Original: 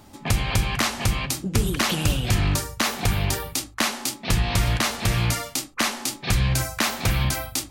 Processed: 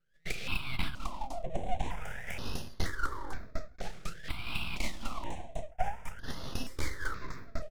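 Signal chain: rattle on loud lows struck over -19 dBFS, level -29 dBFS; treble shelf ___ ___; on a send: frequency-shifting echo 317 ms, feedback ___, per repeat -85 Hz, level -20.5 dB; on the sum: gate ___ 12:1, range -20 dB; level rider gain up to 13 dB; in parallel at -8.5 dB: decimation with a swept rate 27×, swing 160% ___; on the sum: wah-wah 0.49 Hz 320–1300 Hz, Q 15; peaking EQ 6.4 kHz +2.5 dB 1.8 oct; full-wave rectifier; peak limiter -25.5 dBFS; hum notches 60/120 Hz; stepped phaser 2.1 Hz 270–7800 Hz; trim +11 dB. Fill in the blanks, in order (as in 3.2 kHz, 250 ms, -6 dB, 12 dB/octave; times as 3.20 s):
2.7 kHz, +11.5 dB, 32%, -33 dBFS, 3.5 Hz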